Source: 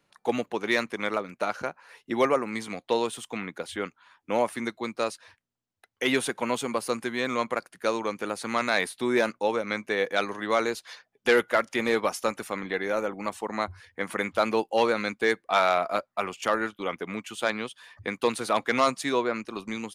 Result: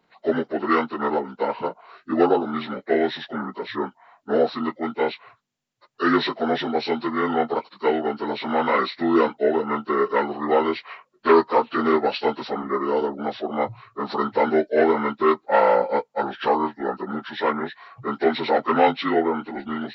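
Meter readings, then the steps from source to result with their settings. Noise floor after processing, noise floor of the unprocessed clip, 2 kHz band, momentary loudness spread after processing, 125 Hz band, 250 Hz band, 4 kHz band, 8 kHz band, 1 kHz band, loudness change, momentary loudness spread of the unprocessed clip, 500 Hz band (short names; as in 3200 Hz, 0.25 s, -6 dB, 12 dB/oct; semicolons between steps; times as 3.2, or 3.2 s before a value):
-67 dBFS, -80 dBFS, -0.5 dB, 11 LU, +4.0 dB, +7.0 dB, +0.5 dB, under -20 dB, +6.5 dB, +5.0 dB, 11 LU, +5.5 dB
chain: inharmonic rescaling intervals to 76%; gain +6.5 dB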